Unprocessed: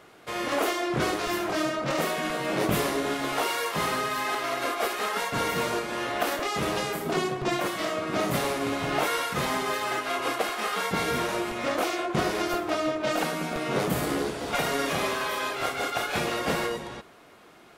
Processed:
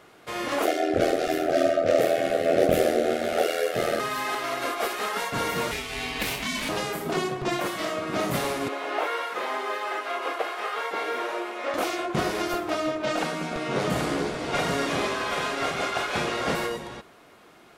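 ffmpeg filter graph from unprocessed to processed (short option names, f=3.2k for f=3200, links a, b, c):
-filter_complex "[0:a]asettb=1/sr,asplit=3[a][b][c];[a]atrim=end=0.654[d];[b]atrim=start=0.65:end=4,asetpts=PTS-STARTPTS,afade=t=in:d=0.004:c=qsin,afade=t=out:st=3.346:d=0.004:c=qsin,asuperstop=centerf=970:order=4:qfactor=1.5,equalizer=f=590:w=1.1:g=14.5,aeval=exprs='val(0)*sin(2*PI*41*n/s)':c=same[e];[c]atrim=start=3.996[f];[d][e]acrossfade=d=0.004:c1=hsin:c2=qsin[g];[g][f]acrossfade=d=0.004:c1=qsin:c2=hsin,asettb=1/sr,asplit=3[h][i][j];[h]atrim=end=5.714[k];[i]atrim=start=5.71:end=6.69,asetpts=PTS-STARTPTS,afade=t=in:d=0.004:c=qsin,afade=t=out:st=0.976:d=0.004:c=qsin,highpass=f=1k:w=0.5412,highpass=f=1k:w=1.3066,acontrast=38,aeval=exprs='val(0)*sin(2*PI*1000*n/s)':c=same[l];[j]atrim=start=6.686[m];[k][l]acrossfade=d=0.004:c1=hsin:c2=qsin[n];[n][m]acrossfade=d=0.004:c1=qsin:c2=hsin,asettb=1/sr,asplit=3[o][p][q];[o]atrim=end=8.684[r];[p]atrim=start=8.68:end=11.74,asetpts=PTS-STARTPTS,afade=t=in:d=0.004:c=qsin,afade=t=out:st=3.056:d=0.004:c=qsin,acrossover=split=3800[s][t];[t]acompressor=threshold=-43dB:ratio=4:attack=1:release=60[u];[s][u]amix=inputs=2:normalize=0,highpass=f=360:w=0.5412,highpass=f=360:w=1.3066,highshelf=f=3.9k:g=-7[v];[q]atrim=start=11.736[w];[r][v]acrossfade=d=0.004:c1=hsin:c2=qsin[x];[x][w]acrossfade=d=0.004:c1=qsin:c2=hsin,asettb=1/sr,asplit=3[y][z][aa];[y]atrim=end=13.054[ab];[z]atrim=start=13.05:end=16.55,asetpts=PTS-STARTPTS,afade=t=in:d=0.004:c=qsin,afade=t=out:st=3.496:d=0.004:c=qsin,lowpass=8.4k,aecho=1:1:782:0.562,atrim=end_sample=154350[ac];[aa]atrim=start=16.546[ad];[ab][ac]acrossfade=d=0.004:c1=hsin:c2=qsin[ae];[ae][ad]acrossfade=d=0.004:c1=qsin:c2=hsin"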